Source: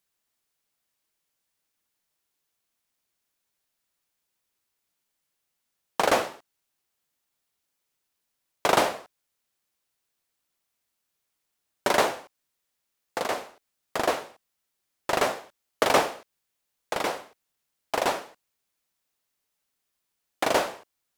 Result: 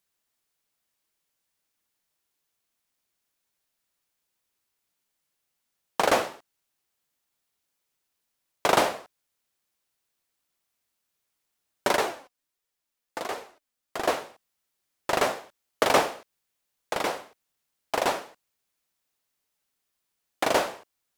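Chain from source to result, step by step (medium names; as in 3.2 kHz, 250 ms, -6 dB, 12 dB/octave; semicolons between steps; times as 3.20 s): 11.96–14.05 s: flange 1.4 Hz, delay 2 ms, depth 2.3 ms, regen +54%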